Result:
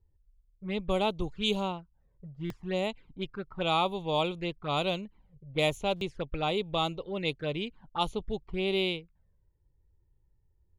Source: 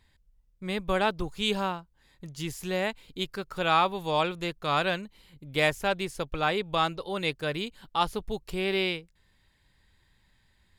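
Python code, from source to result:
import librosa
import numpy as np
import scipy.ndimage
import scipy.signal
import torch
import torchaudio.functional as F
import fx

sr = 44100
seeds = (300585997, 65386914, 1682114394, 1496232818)

y = fx.env_flanger(x, sr, rest_ms=2.3, full_db=-26.5)
y = fx.env_lowpass(y, sr, base_hz=360.0, full_db=-24.5)
y = fx.buffer_glitch(y, sr, at_s=(2.45, 5.96), block=256, repeats=8)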